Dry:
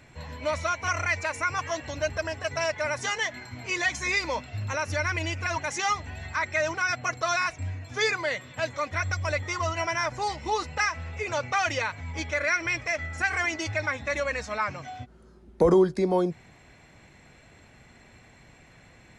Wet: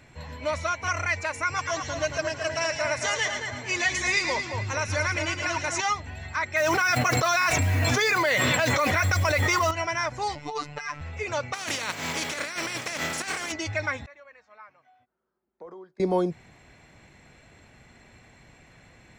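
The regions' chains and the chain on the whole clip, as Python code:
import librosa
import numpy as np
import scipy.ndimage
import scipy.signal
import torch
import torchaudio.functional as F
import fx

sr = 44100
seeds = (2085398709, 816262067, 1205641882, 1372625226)

y = fx.chain(x, sr, fx.lowpass(hz=9500.0, slope=24),
    fx.high_shelf(hz=5500.0, db=6.5),
    fx.echo_split(split_hz=1900.0, low_ms=223, high_ms=111, feedback_pct=52, wet_db=-5.5), at=(1.45, 5.81))
y = fx.chain(y, sr, fx.low_shelf(hz=150.0, db=-8.5),
    fx.mod_noise(seeds[0], snr_db=24),
    fx.env_flatten(amount_pct=100), at=(6.56, 9.71))
y = fx.chain(y, sr, fx.high_shelf(hz=4900.0, db=-4.5),
    fx.over_compress(threshold_db=-28.0, ratio=-0.5),
    fx.robotise(hz=147.0), at=(10.35, 11.01))
y = fx.spec_flatten(y, sr, power=0.46, at=(11.53, 13.51), fade=0.02)
y = fx.highpass(y, sr, hz=120.0, slope=24, at=(11.53, 13.51), fade=0.02)
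y = fx.over_compress(y, sr, threshold_db=-33.0, ratio=-1.0, at=(11.53, 13.51), fade=0.02)
y = fx.chain(y, sr, fx.lowpass(hz=1100.0, slope=12),
    fx.differentiator(), at=(14.06, 16.0))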